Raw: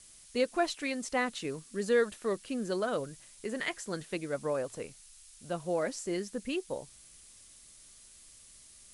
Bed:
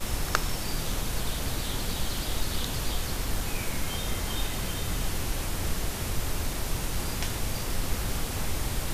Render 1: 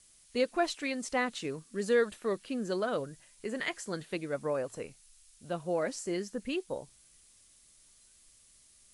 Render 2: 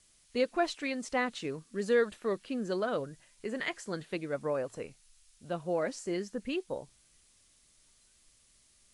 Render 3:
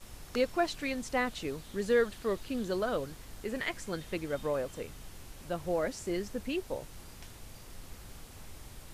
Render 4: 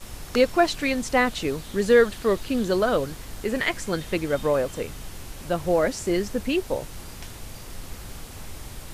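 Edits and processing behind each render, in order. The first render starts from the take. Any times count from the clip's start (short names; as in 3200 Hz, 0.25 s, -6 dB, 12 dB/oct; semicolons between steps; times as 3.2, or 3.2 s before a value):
noise print and reduce 6 dB
high shelf 8800 Hz -10 dB
add bed -18.5 dB
gain +10 dB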